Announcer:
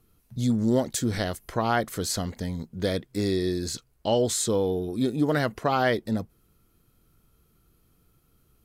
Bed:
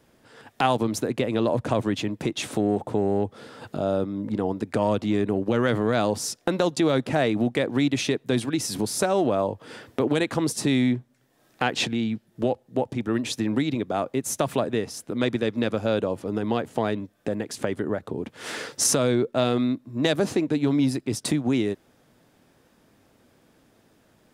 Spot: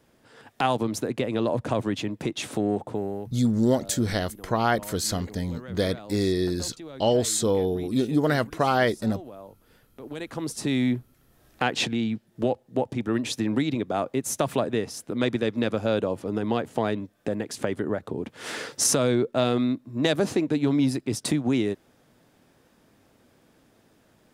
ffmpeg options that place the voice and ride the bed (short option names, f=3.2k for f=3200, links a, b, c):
-filter_complex "[0:a]adelay=2950,volume=1.5dB[a];[1:a]volume=17dB,afade=t=out:st=2.75:d=0.63:silence=0.133352,afade=t=in:st=10.01:d=1.01:silence=0.112202[b];[a][b]amix=inputs=2:normalize=0"